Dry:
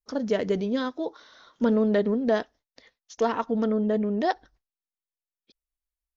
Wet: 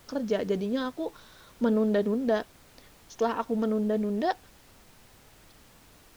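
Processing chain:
notch filter 2,000 Hz
background noise pink −53 dBFS
level −2.5 dB

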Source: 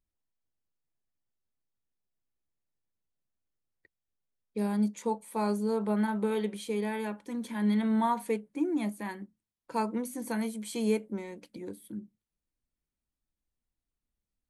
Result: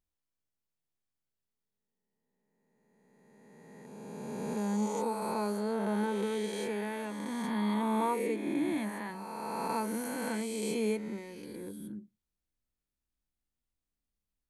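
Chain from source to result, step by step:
peak hold with a rise ahead of every peak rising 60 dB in 2.68 s
level −5.5 dB

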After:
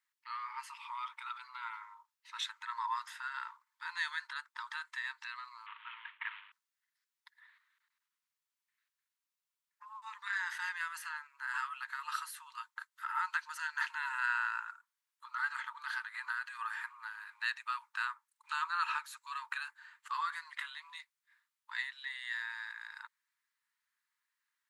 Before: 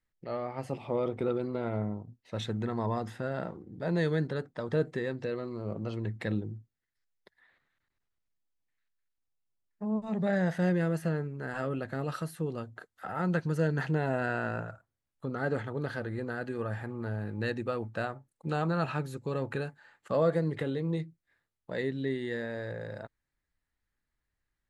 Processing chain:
0:05.66–0:06.52: variable-slope delta modulation 16 kbit/s
linear-phase brick-wall high-pass 880 Hz
0:16.14–0:16.89: multiband upward and downward compressor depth 70%
level +3 dB

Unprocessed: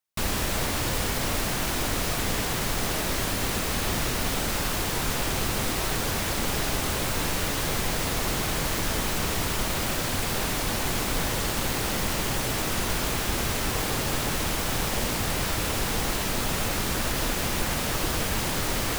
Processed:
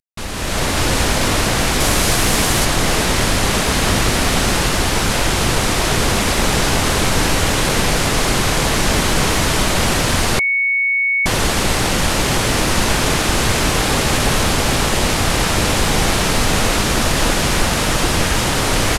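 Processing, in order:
variable-slope delta modulation 64 kbit/s
single-tap delay 592 ms −4.5 dB
automatic gain control gain up to 11.5 dB
0:01.80–0:02.65: high-shelf EQ 6,800 Hz +6.5 dB
0:10.39–0:11.26: beep over 2,220 Hz −13.5 dBFS

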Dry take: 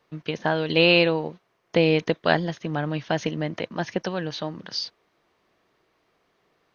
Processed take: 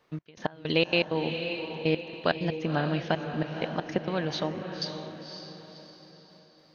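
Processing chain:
downward compressor 2 to 1, threshold −23 dBFS, peak gain reduction 6 dB
gate pattern "xx..x..xx.x.xxxx" 162 BPM −24 dB
on a send: feedback delay with all-pass diffusion 540 ms, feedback 43%, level −7 dB

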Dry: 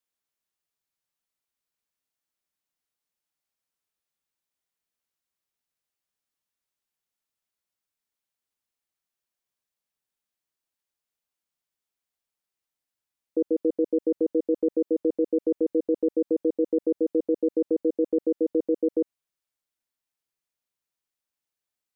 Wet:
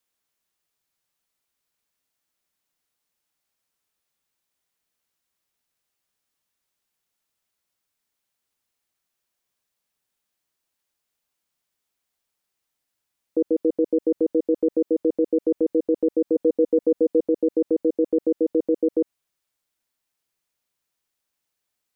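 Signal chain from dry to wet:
in parallel at +2.5 dB: brickwall limiter −26 dBFS, peak gain reduction 11 dB
0:16.35–0:17.20: on the sum: comb filter 4.1 ms, depth 50%

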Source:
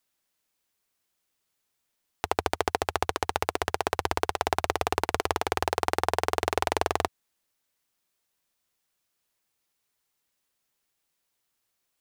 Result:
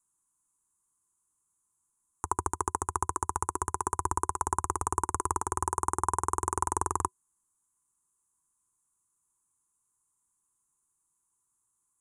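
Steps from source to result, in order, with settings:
drawn EQ curve 150 Hz 0 dB, 240 Hz −5 dB, 370 Hz −3 dB, 620 Hz −27 dB, 1,000 Hz +6 dB, 2,100 Hz −22 dB, 4,600 Hz −29 dB, 6,900 Hz +6 dB, 10,000 Hz +9 dB, 15,000 Hz −25 dB

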